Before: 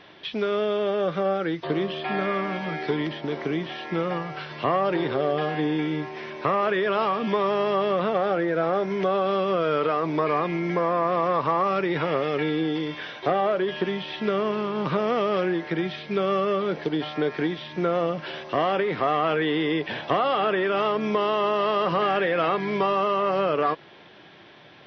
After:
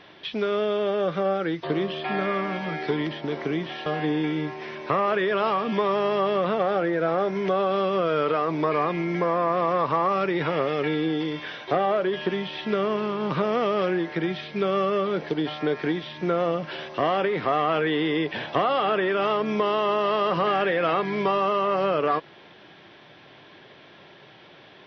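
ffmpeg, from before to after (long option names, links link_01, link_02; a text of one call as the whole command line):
ffmpeg -i in.wav -filter_complex "[0:a]asplit=2[link_01][link_02];[link_01]atrim=end=3.862[link_03];[link_02]atrim=start=5.408[link_04];[link_03][link_04]acrossfade=duration=0.004:curve1=hsin:curve2=hsin" out.wav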